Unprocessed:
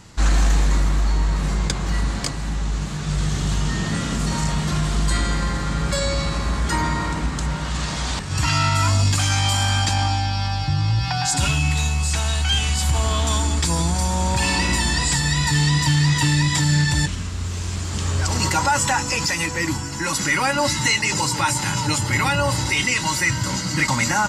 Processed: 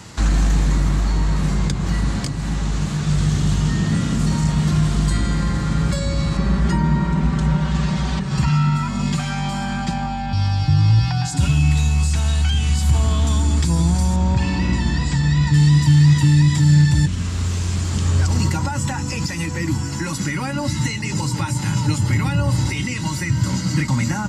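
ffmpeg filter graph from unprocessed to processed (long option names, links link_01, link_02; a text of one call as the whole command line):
ffmpeg -i in.wav -filter_complex "[0:a]asettb=1/sr,asplit=3[link_01][link_02][link_03];[link_01]atrim=end=6.374[link_04];[link_02]atrim=start=6.37:end=10.33,asetpts=PTS-STARTPTS,afade=type=in:duration=0.004:curve=qsin,afade=type=out:start_time=3.956:duration=0.004:curve=qsin,lowpass=frequency=2900:poles=1,aecho=1:1:5.2:0.98,atrim=end_sample=174636[link_05];[link_03]atrim=start=10.326[link_06];[link_04][link_05]acrossfade=duration=0.004:curve1=hsin:curve2=qsin[link_07];[link_07][link_06]acrossfade=duration=0.004:curve1=qsin:curve2=hsin,asettb=1/sr,asplit=3[link_08][link_09][link_10];[link_08]atrim=end=14.164[link_11];[link_09]atrim=start=14.16:end=15.54,asetpts=PTS-STARTPTS,afade=type=in:duration=0.004:curve=qsin,afade=type=out:start_time=1.376:duration=0.004:curve=qsin,lowpass=frequency=7700:width=0.5412,lowpass=frequency=7700:width=1.3066,highshelf=frequency=5100:gain=-10[link_12];[link_10]atrim=start=15.536[link_13];[link_11][link_12]acrossfade=duration=0.004:curve1=hsin:curve2=qsin[link_14];[link_14][link_13]acrossfade=duration=0.004:curve1=qsin:curve2=hsin,highpass=70,acrossover=split=270[link_15][link_16];[link_16]acompressor=threshold=-39dB:ratio=3[link_17];[link_15][link_17]amix=inputs=2:normalize=0,volume=7dB" out.wav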